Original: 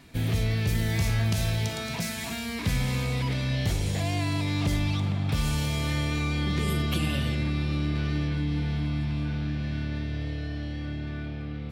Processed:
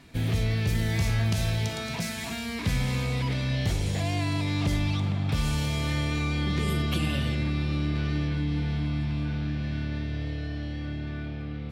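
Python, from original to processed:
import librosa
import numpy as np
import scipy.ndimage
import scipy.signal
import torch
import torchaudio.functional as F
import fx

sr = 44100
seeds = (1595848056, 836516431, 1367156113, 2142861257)

y = fx.high_shelf(x, sr, hz=12000.0, db=-7.5)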